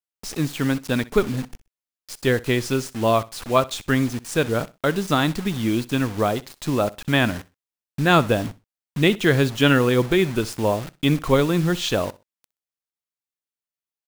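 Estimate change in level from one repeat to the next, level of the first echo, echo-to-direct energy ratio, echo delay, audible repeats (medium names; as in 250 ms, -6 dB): -13.0 dB, -20.0 dB, -20.0 dB, 63 ms, 2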